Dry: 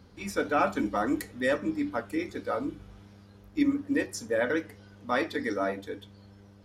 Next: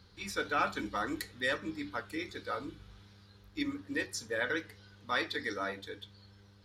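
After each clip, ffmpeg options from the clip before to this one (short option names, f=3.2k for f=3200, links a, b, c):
-af "equalizer=f=250:t=o:w=0.67:g=-9,equalizer=f=630:t=o:w=0.67:g=-7,equalizer=f=1.6k:t=o:w=0.67:g=3,equalizer=f=4k:t=o:w=0.67:g=10,volume=-4dB"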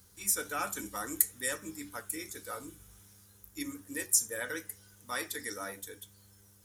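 -af "aexciter=amount=11.8:drive=8.9:freq=6.6k,volume=-4.5dB"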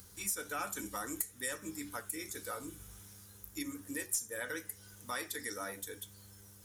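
-af "acompressor=mode=upward:threshold=-58dB:ratio=2.5,aeval=exprs='(tanh(5.01*val(0)+0.1)-tanh(0.1))/5.01':c=same,acompressor=threshold=-45dB:ratio=2,volume=4dB"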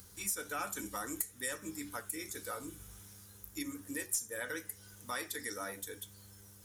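-af anull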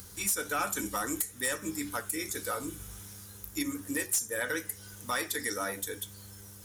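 -af "asoftclip=type=hard:threshold=-30.5dB,volume=7.5dB"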